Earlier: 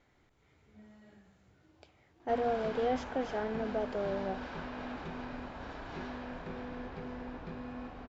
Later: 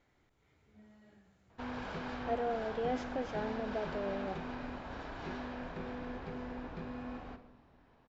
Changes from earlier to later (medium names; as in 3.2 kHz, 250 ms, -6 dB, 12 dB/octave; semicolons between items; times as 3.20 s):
speech -3.5 dB; background: entry -0.70 s